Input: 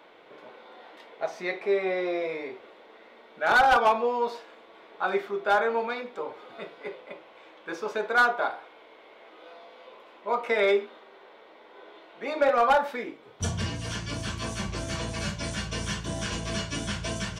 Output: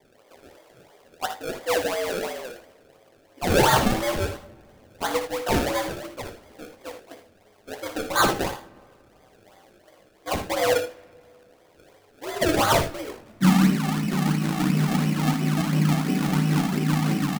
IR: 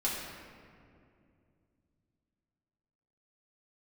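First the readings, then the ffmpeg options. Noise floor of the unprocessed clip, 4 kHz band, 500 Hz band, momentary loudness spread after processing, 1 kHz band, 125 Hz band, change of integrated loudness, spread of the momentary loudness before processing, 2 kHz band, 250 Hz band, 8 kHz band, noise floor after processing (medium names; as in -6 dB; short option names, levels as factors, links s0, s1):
-53 dBFS, +5.0 dB, +0.5 dB, 18 LU, -0.5 dB, +11.5 dB, +3.5 dB, 18 LU, -1.5 dB, +13.0 dB, +6.5 dB, -57 dBFS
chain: -filter_complex "[0:a]asuperstop=centerf=2300:order=20:qfactor=2.4,highshelf=f=3200:g=-11.5,afreqshift=98,asubboost=boost=5.5:cutoff=210,adynamicsmooth=sensitivity=2.5:basefreq=520,acrusher=samples=31:mix=1:aa=0.000001:lfo=1:lforange=31:lforate=2.9,flanger=delay=7.8:depth=8.3:regen=-42:speed=0.65:shape=sinusoidal,aecho=1:1:59|79:0.299|0.251,asplit=2[s0][s1];[1:a]atrim=start_sample=2205[s2];[s1][s2]afir=irnorm=-1:irlink=0,volume=0.0562[s3];[s0][s3]amix=inputs=2:normalize=0,volume=2.24"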